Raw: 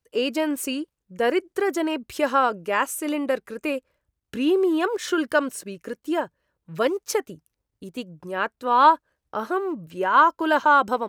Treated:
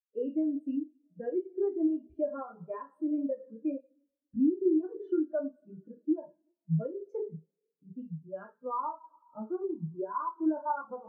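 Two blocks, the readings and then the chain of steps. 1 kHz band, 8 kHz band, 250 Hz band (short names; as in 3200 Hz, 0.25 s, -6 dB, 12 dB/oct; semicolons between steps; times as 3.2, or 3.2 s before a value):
-17.5 dB, under -40 dB, -4.5 dB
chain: tone controls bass +14 dB, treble -8 dB; two-slope reverb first 0.48 s, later 3.7 s, from -22 dB, DRR -1.5 dB; dynamic EQ 590 Hz, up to +3 dB, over -26 dBFS, Q 1.1; compressor 4:1, threshold -19 dBFS, peak gain reduction 11.5 dB; spectral expander 2.5:1; gain -8.5 dB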